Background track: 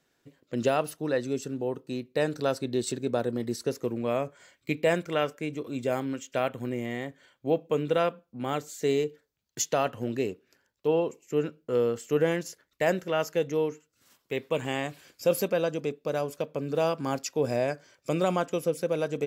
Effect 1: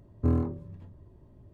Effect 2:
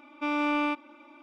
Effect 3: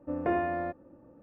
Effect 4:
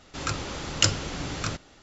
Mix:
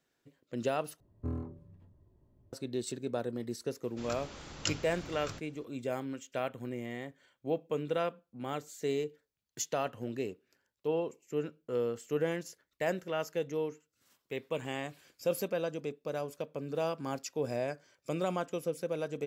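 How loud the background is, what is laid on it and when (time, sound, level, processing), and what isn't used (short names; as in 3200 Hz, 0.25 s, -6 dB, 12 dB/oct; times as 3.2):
background track -7 dB
1 replace with 1 -11.5 dB
3.83 add 4 -13 dB
not used: 2, 3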